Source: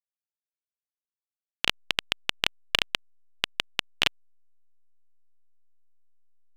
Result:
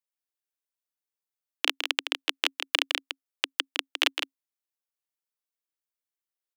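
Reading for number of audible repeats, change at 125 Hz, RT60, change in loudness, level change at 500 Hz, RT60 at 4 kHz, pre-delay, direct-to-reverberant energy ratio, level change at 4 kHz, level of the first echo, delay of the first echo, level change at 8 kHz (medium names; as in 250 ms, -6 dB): 1, under -40 dB, no reverb, 0.0 dB, 0.0 dB, no reverb, no reverb, no reverb, +0.5 dB, -7.5 dB, 160 ms, +1.5 dB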